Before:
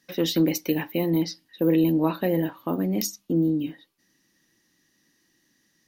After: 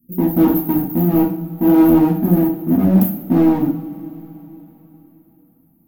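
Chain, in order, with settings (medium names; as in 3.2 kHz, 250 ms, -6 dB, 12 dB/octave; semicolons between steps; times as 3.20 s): inverse Chebyshev band-stop 710–7300 Hz, stop band 50 dB; in parallel at -3 dB: wavefolder -26.5 dBFS; on the sum: two-slope reverb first 0.45 s, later 3.9 s, from -22 dB, DRR -4.5 dB; loudspeaker Doppler distortion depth 0.16 ms; trim +7 dB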